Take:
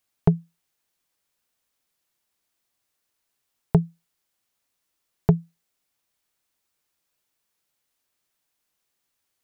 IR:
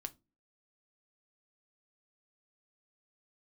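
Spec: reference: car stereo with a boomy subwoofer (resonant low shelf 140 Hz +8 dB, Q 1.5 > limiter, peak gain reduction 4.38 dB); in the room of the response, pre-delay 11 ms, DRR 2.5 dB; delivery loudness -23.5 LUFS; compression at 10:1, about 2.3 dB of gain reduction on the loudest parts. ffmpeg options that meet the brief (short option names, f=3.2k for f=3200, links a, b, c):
-filter_complex "[0:a]acompressor=threshold=-16dB:ratio=10,asplit=2[a][b];[1:a]atrim=start_sample=2205,adelay=11[c];[b][c]afir=irnorm=-1:irlink=0,volume=0.5dB[d];[a][d]amix=inputs=2:normalize=0,lowshelf=f=140:t=q:w=1.5:g=8,volume=4dB,alimiter=limit=-4.5dB:level=0:latency=1"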